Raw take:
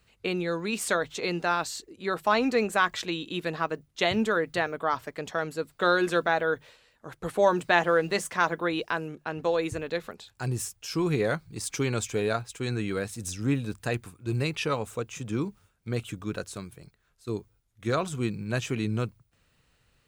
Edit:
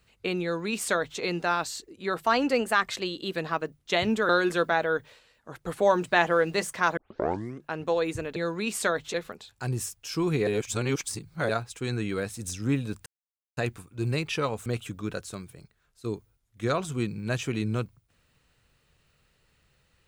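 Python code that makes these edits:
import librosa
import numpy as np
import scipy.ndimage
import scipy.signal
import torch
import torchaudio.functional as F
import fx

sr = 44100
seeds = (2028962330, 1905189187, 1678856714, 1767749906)

y = fx.edit(x, sr, fx.duplicate(start_s=0.42, length_s=0.78, to_s=9.93),
    fx.speed_span(start_s=2.24, length_s=1.21, speed=1.08),
    fx.cut(start_s=4.38, length_s=1.48),
    fx.tape_start(start_s=8.54, length_s=0.65),
    fx.reverse_span(start_s=11.26, length_s=1.02),
    fx.insert_silence(at_s=13.85, length_s=0.51),
    fx.cut(start_s=14.94, length_s=0.95), tone=tone)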